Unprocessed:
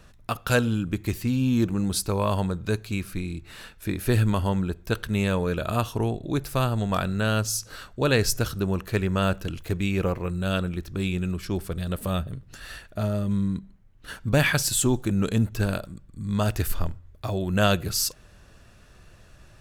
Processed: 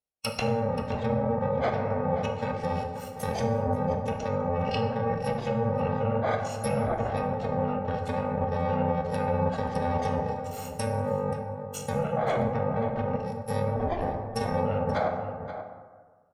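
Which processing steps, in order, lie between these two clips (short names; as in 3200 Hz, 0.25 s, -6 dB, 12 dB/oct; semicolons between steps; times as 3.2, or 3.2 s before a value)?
FFT order left unsorted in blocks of 128 samples; treble ducked by the level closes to 2700 Hz, closed at -19.5 dBFS; HPF 230 Hz 6 dB/oct; gate -46 dBFS, range -38 dB; spectral noise reduction 11 dB; treble ducked by the level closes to 830 Hz, closed at -28.5 dBFS; band shelf 640 Hz +8 dB 1 oct; in parallel at +1 dB: negative-ratio compressor -34 dBFS, ratio -0.5; on the sum: limiter -17 dBFS, peak gain reduction 5.5 dB; tempo 1.2×; outdoor echo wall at 91 m, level -10 dB; plate-style reverb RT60 1.5 s, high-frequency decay 0.45×, DRR 3 dB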